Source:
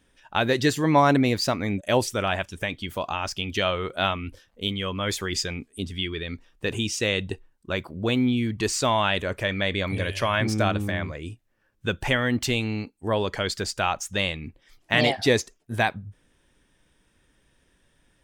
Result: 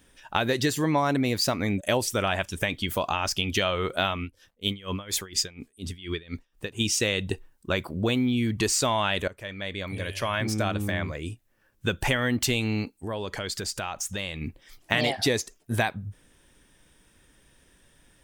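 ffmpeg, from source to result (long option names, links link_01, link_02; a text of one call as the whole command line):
ffmpeg -i in.wav -filter_complex "[0:a]asettb=1/sr,asplit=3[link_01][link_02][link_03];[link_01]atrim=end=4.224[link_04];[link_02]atrim=start=4.22:end=6.81,asetpts=PTS-STARTPTS,afade=type=in:duration=0.004:curve=qsin,afade=type=out:start_time=2.586:duration=0.004:curve=qsin,aeval=exprs='val(0)*pow(10,-23*(0.5-0.5*cos(2*PI*4.2*n/s))/20)':channel_layout=same[link_05];[link_03]atrim=start=6.806[link_06];[link_04][link_05]acrossfade=duration=0.004:curve1=hsin:curve2=qsin[link_07];[link_07][link_06]acrossfade=duration=0.004:curve1=qsin:curve2=hsin,asettb=1/sr,asplit=3[link_08][link_09][link_10];[link_08]atrim=end=12.994[link_11];[link_09]atrim=start=12.99:end=14.41,asetpts=PTS-STARTPTS,afade=type=in:duration=0.004:curve=qsin,afade=type=out:start_time=1.416:duration=0.004:curve=qsin,acompressor=threshold=-36dB:ratio=3:attack=3.2:release=140:knee=1:detection=peak[link_12];[link_10]atrim=start=14.406[link_13];[link_11][link_12]acrossfade=duration=0.004:curve1=hsin:curve2=qsin[link_14];[link_14][link_13]acrossfade=duration=0.004:curve1=qsin:curve2=hsin,asplit=2[link_15][link_16];[link_15]atrim=end=9.28,asetpts=PTS-STARTPTS,afade=type=out:start_time=9.276:duration=0.004:curve=hsin:silence=0.112202[link_17];[link_16]atrim=start=9.28,asetpts=PTS-STARTPTS,afade=type=in:duration=2.87:silence=0.112202[link_18];[link_17][link_18]concat=n=2:v=0:a=1,highshelf=frequency=8000:gain=9,acompressor=threshold=-26dB:ratio=4,volume=4dB" out.wav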